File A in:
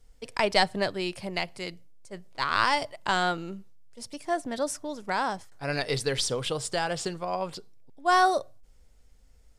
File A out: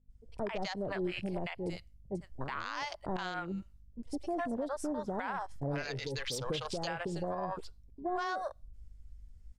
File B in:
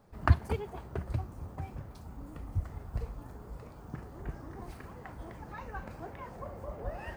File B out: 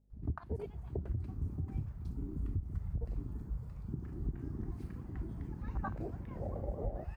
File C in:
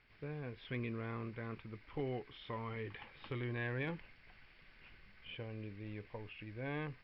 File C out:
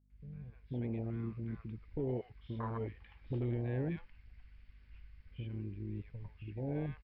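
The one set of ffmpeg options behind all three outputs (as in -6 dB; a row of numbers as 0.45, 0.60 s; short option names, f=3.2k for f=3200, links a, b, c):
-filter_complex "[0:a]dynaudnorm=f=500:g=3:m=8dB,acrossover=split=640[a][b];[b]adelay=100[c];[a][c]amix=inputs=2:normalize=0,aeval=exprs='val(0)+0.00282*(sin(2*PI*50*n/s)+sin(2*PI*2*50*n/s)/2+sin(2*PI*3*50*n/s)/3+sin(2*PI*4*50*n/s)/4+sin(2*PI*5*50*n/s)/5)':c=same,afwtdn=0.0316,acompressor=threshold=-25dB:ratio=6,alimiter=level_in=1dB:limit=-24dB:level=0:latency=1:release=156,volume=-1dB,volume=-2dB"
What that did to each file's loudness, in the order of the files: -9.5, -2.5, +3.0 LU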